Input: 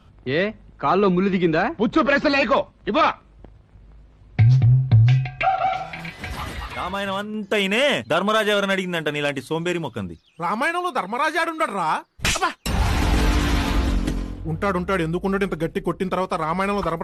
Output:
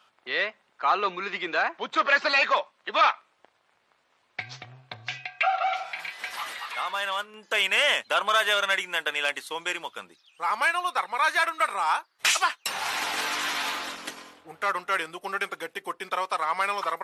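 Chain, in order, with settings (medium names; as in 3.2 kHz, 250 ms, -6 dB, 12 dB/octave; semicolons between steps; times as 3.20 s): high-pass 930 Hz 12 dB/octave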